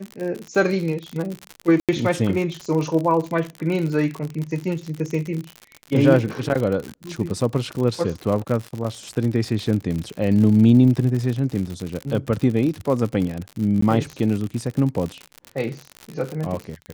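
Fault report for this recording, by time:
crackle 74/s -25 dBFS
1.8–1.89 gap 87 ms
13.81–13.82 gap 14 ms

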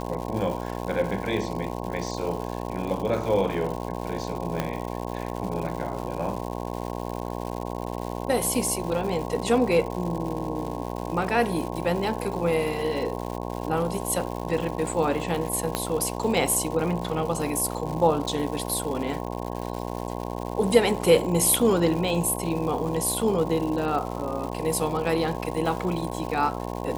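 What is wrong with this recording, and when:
buzz 60 Hz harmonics 18 -32 dBFS
crackle 260/s -32 dBFS
4.6 pop -12 dBFS
15.75 pop -10 dBFS

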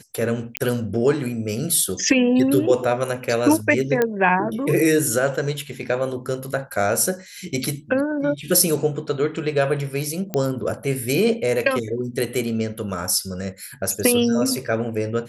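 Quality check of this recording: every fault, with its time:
0.57 pop -5 dBFS
4.02 pop -7 dBFS
10.34 pop -10 dBFS

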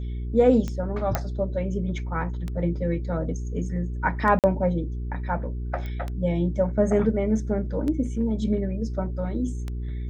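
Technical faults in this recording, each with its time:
hum 60 Hz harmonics 7 -30 dBFS
tick 33 1/3 rpm -19 dBFS
1.15 pop -9 dBFS
4.39–4.44 gap 48 ms
5.86 pop -23 dBFS

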